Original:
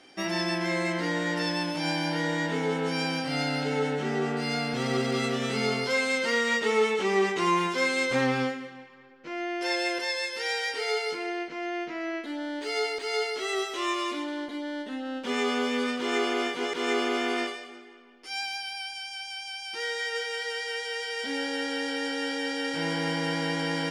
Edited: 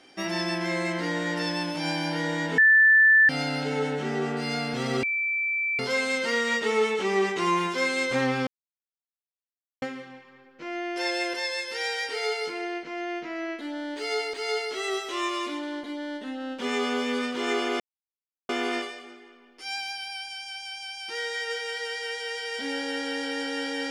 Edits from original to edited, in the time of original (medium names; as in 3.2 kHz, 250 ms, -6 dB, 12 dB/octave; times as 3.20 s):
2.58–3.29 s: bleep 1.76 kHz -13.5 dBFS
5.03–5.79 s: bleep 2.33 kHz -24 dBFS
8.47 s: insert silence 1.35 s
16.45–17.14 s: mute